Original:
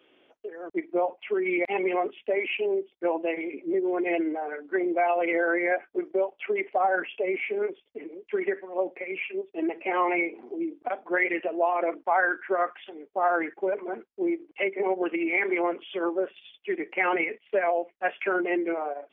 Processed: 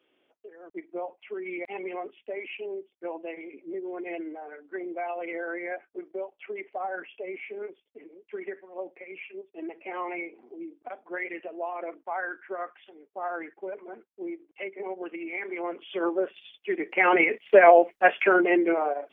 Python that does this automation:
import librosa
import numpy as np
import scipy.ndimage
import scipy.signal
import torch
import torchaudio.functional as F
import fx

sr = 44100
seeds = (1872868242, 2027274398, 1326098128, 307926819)

y = fx.gain(x, sr, db=fx.line((15.52, -9.0), (15.99, 0.5), (16.74, 0.5), (17.69, 11.0), (18.5, 4.5)))